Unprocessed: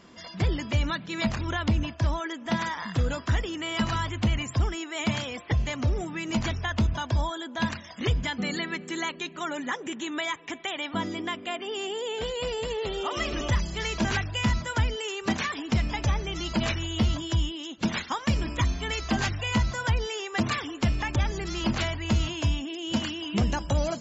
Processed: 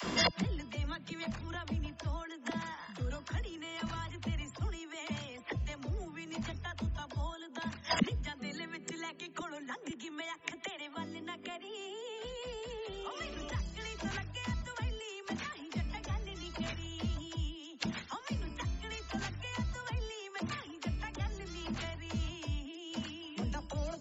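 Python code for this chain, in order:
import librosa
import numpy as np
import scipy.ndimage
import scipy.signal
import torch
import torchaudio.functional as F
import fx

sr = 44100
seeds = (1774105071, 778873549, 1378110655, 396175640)

y = fx.gate_flip(x, sr, shuts_db=-30.0, range_db=-28)
y = fx.dispersion(y, sr, late='lows', ms=44.0, hz=380.0)
y = F.gain(torch.from_numpy(y), 16.0).numpy()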